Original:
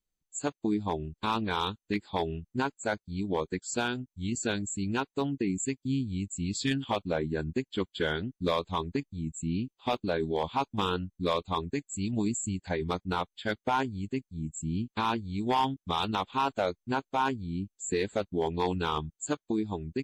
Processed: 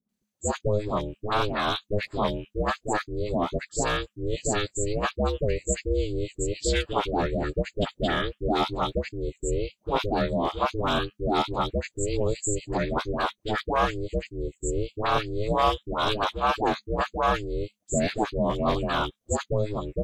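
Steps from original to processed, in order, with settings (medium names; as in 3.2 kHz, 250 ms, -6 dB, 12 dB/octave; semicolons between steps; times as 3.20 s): phase dispersion highs, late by 92 ms, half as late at 760 Hz; ring modulator 210 Hz; trim +7.5 dB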